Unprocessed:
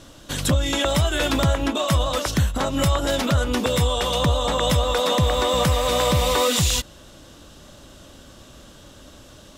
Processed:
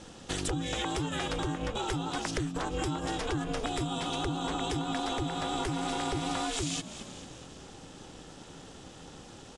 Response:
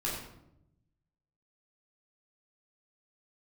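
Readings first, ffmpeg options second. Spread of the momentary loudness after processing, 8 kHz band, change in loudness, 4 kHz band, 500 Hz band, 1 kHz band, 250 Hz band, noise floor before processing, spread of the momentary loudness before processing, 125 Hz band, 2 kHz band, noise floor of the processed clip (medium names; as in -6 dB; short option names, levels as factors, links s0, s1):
16 LU, -11.5 dB, -12.0 dB, -12.5 dB, -14.0 dB, -9.5 dB, -8.0 dB, -46 dBFS, 4 LU, -14.5 dB, -10.5 dB, -50 dBFS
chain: -filter_complex "[0:a]asplit=2[s0][s1];[s1]asplit=4[s2][s3][s4][s5];[s2]adelay=217,afreqshift=-52,volume=0.1[s6];[s3]adelay=434,afreqshift=-104,volume=0.0537[s7];[s4]adelay=651,afreqshift=-156,volume=0.0292[s8];[s5]adelay=868,afreqshift=-208,volume=0.0157[s9];[s6][s7][s8][s9]amix=inputs=4:normalize=0[s10];[s0][s10]amix=inputs=2:normalize=0,acompressor=threshold=0.0447:ratio=6,aresample=22050,aresample=44100,bandreject=f=3900:w=14,aeval=exprs='val(0)*sin(2*PI*220*n/s)':c=same"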